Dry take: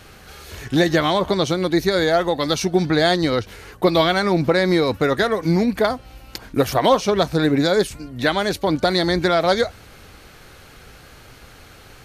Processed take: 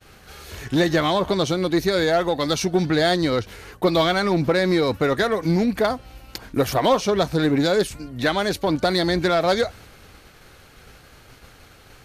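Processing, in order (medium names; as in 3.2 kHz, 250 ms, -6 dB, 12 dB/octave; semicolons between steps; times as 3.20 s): expander -40 dBFS; in parallel at -4 dB: hard clipper -17 dBFS, distortion -9 dB; on the sum: trim -5 dB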